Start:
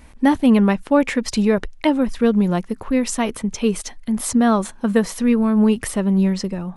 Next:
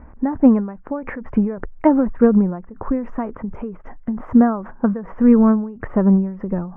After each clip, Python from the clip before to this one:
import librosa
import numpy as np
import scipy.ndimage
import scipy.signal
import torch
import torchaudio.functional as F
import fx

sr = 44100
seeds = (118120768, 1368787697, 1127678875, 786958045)

y = scipy.signal.sosfilt(scipy.signal.cheby2(4, 50, 3800.0, 'lowpass', fs=sr, output='sos'), x)
y = fx.end_taper(y, sr, db_per_s=100.0)
y = F.gain(torch.from_numpy(y), 5.0).numpy()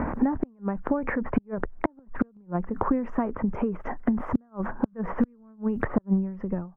y = fx.fade_out_tail(x, sr, length_s=1.03)
y = fx.gate_flip(y, sr, shuts_db=-8.0, range_db=-41)
y = fx.band_squash(y, sr, depth_pct=100)
y = F.gain(torch.from_numpy(y), -1.5).numpy()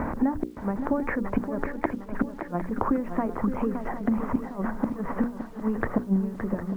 y = fx.hum_notches(x, sr, base_hz=60, count=9)
y = fx.quant_dither(y, sr, seeds[0], bits=10, dither='none')
y = fx.echo_swing(y, sr, ms=757, ratio=3, feedback_pct=42, wet_db=-9.0)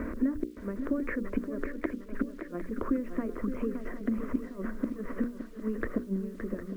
y = fx.fixed_phaser(x, sr, hz=340.0, stages=4)
y = F.gain(torch.from_numpy(y), -2.5).numpy()